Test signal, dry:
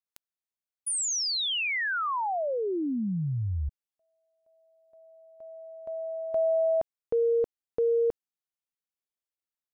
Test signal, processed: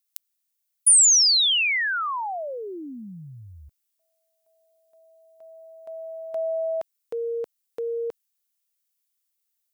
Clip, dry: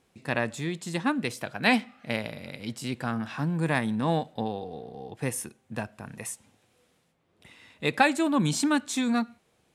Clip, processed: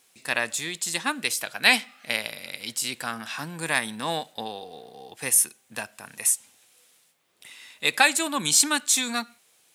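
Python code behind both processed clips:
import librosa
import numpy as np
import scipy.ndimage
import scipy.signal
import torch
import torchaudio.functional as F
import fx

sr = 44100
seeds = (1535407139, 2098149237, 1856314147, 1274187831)

y = fx.tilt_eq(x, sr, slope=4.5)
y = F.gain(torch.from_numpy(y), 1.0).numpy()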